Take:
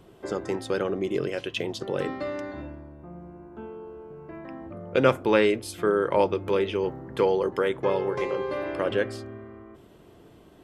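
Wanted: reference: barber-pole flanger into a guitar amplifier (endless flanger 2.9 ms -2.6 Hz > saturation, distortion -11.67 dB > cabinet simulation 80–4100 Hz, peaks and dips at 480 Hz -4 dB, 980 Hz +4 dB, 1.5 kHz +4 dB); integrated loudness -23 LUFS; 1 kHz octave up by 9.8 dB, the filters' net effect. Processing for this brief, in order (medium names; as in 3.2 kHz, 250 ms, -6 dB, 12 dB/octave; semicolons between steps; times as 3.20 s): peaking EQ 1 kHz +8.5 dB; endless flanger 2.9 ms -2.6 Hz; saturation -19 dBFS; cabinet simulation 80–4100 Hz, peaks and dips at 480 Hz -4 dB, 980 Hz +4 dB, 1.5 kHz +4 dB; trim +6.5 dB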